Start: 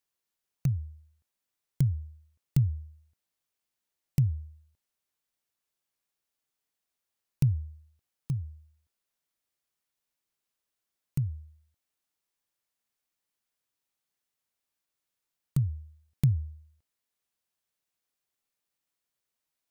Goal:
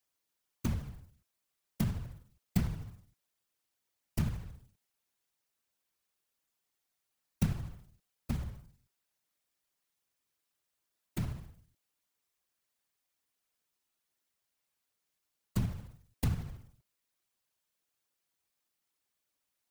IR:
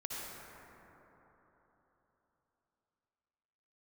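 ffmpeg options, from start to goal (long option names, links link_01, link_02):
-filter_complex "[0:a]acrossover=split=420|3000[link_01][link_02][link_03];[link_01]acompressor=threshold=-34dB:ratio=2.5[link_04];[link_04][link_02][link_03]amix=inputs=3:normalize=0,acrusher=bits=3:mode=log:mix=0:aa=0.000001,afftfilt=real='hypot(re,im)*cos(2*PI*random(0))':imag='hypot(re,im)*sin(2*PI*random(1))':win_size=512:overlap=0.75,volume=7.5dB"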